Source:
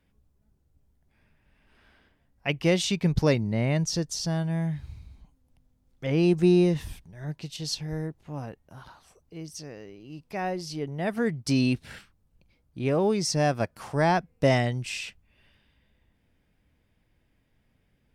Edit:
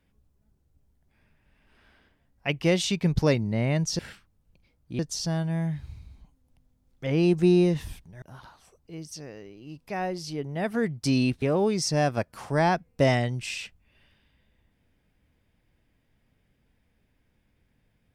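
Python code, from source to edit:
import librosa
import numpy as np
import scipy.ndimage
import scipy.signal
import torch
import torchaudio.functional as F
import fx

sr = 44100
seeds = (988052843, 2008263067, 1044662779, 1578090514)

y = fx.edit(x, sr, fx.cut(start_s=7.22, length_s=1.43),
    fx.move(start_s=11.85, length_s=1.0, to_s=3.99), tone=tone)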